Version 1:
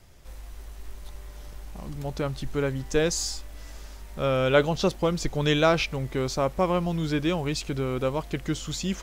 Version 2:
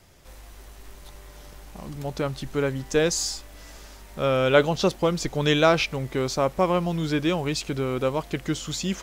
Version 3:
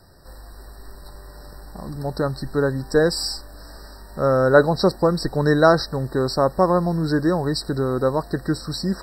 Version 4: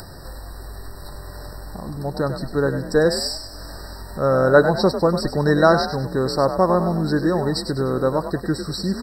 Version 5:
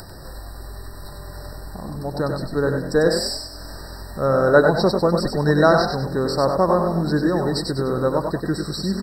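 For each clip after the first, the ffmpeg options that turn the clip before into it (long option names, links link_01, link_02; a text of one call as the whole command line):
ffmpeg -i in.wav -af "lowshelf=frequency=73:gain=-10.5,volume=2.5dB" out.wav
ffmpeg -i in.wav -af "afftfilt=real='re*eq(mod(floor(b*sr/1024/1900),2),0)':imag='im*eq(mod(floor(b*sr/1024/1900),2),0)':win_size=1024:overlap=0.75,volume=4.5dB" out.wav
ffmpeg -i in.wav -filter_complex "[0:a]asplit=5[link_01][link_02][link_03][link_04][link_05];[link_02]adelay=99,afreqshift=43,volume=-9.5dB[link_06];[link_03]adelay=198,afreqshift=86,volume=-17.9dB[link_07];[link_04]adelay=297,afreqshift=129,volume=-26.3dB[link_08];[link_05]adelay=396,afreqshift=172,volume=-34.7dB[link_09];[link_01][link_06][link_07][link_08][link_09]amix=inputs=5:normalize=0,acompressor=mode=upward:threshold=-27dB:ratio=2.5" out.wav
ffmpeg -i in.wav -af "aecho=1:1:95:0.501,volume=-1dB" out.wav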